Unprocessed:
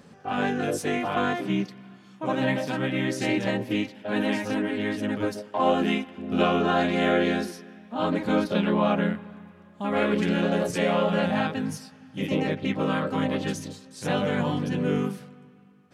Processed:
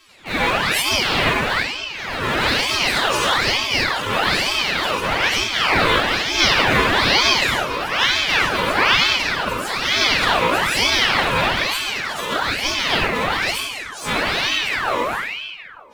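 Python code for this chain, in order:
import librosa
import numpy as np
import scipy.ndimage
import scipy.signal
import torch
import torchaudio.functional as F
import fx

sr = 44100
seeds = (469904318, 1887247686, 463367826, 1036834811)

p1 = fx.freq_snap(x, sr, grid_st=2)
p2 = fx.peak_eq(p1, sr, hz=1500.0, db=6.0, octaves=2.6)
p3 = fx.echo_bbd(p2, sr, ms=105, stages=2048, feedback_pct=63, wet_db=-12.5)
p4 = np.where(np.abs(p3) >= 10.0 ** (-23.5 / 20.0), p3, 0.0)
p5 = p3 + (p4 * 10.0 ** (-6.5 / 20.0))
p6 = fx.vibrato(p5, sr, rate_hz=6.0, depth_cents=25.0)
p7 = fx.room_shoebox(p6, sr, seeds[0], volume_m3=1700.0, walls='mixed', distance_m=2.7)
p8 = fx.echo_pitch(p7, sr, ms=92, semitones=2, count=3, db_per_echo=-6.0)
p9 = fx.ring_lfo(p8, sr, carrier_hz=1800.0, swing_pct=60, hz=1.1)
y = p9 * 10.0 ** (-2.5 / 20.0)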